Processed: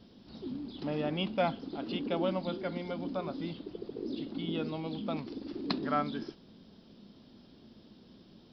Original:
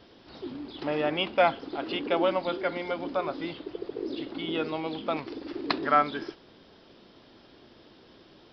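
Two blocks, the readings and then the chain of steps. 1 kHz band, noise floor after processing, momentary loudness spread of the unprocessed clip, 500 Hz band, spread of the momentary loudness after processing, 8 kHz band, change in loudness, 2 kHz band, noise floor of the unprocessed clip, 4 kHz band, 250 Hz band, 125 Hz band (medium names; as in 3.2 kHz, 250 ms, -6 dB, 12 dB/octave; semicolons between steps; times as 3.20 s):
-9.0 dB, -58 dBFS, 14 LU, -7.0 dB, 11 LU, no reading, -6.0 dB, -10.5 dB, -56 dBFS, -6.0 dB, -1.5 dB, +3.5 dB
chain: FFT filter 130 Hz 0 dB, 210 Hz +8 dB, 320 Hz -5 dB, 2 kHz -12 dB, 4.1 kHz -4 dB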